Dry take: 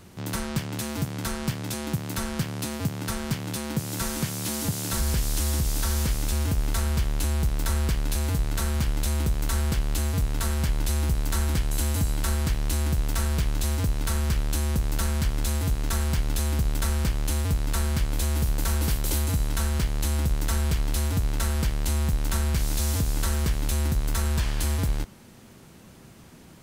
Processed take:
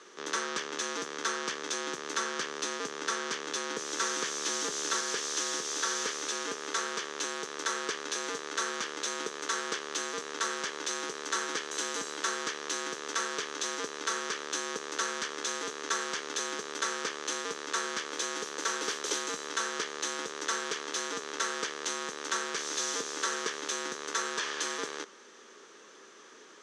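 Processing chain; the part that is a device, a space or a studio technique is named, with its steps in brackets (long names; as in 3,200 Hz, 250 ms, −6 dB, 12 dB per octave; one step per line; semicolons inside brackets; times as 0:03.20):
phone speaker on a table (loudspeaker in its box 340–7,300 Hz, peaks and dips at 430 Hz +9 dB, 710 Hz −7 dB, 1,200 Hz +9 dB, 1,700 Hz +8 dB, 3,400 Hz +6 dB, 6,100 Hz +10 dB)
level −3 dB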